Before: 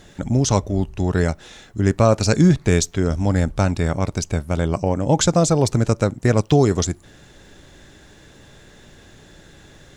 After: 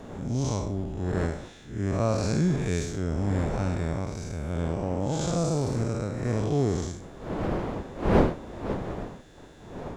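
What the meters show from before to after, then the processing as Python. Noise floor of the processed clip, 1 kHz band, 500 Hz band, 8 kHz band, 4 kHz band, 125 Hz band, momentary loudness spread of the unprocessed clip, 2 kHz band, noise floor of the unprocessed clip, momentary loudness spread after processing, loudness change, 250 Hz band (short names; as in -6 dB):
-47 dBFS, -7.5 dB, -8.0 dB, -13.5 dB, -12.0 dB, -8.0 dB, 8 LU, -9.0 dB, -48 dBFS, 11 LU, -9.5 dB, -8.0 dB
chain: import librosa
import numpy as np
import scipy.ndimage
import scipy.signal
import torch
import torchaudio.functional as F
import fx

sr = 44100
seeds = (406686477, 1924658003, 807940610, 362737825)

y = fx.spec_blur(x, sr, span_ms=187.0)
y = fx.dmg_wind(y, sr, seeds[0], corner_hz=480.0, level_db=-27.0)
y = y * 10.0 ** (-6.5 / 20.0)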